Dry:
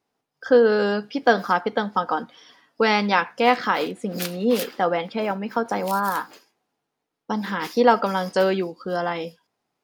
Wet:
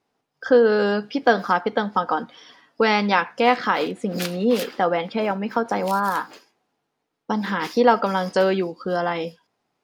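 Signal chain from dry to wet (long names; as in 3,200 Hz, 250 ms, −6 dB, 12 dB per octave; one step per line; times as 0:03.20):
high-shelf EQ 10,000 Hz −10 dB
in parallel at −3 dB: downward compressor, threshold −26 dBFS, peak gain reduction 15 dB
on the sum: level −1 dB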